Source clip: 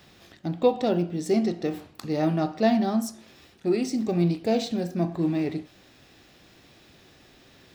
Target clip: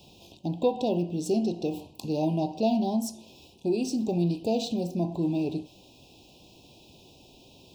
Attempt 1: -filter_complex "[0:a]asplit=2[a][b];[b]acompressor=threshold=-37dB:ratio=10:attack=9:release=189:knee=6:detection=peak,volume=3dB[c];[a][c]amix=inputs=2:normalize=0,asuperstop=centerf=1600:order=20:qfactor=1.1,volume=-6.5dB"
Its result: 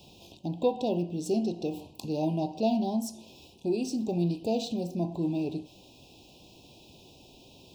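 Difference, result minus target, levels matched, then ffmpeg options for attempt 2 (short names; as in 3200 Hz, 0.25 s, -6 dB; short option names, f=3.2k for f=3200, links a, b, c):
compressor: peak gain reduction +8 dB
-filter_complex "[0:a]asplit=2[a][b];[b]acompressor=threshold=-28dB:ratio=10:attack=9:release=189:knee=6:detection=peak,volume=3dB[c];[a][c]amix=inputs=2:normalize=0,asuperstop=centerf=1600:order=20:qfactor=1.1,volume=-6.5dB"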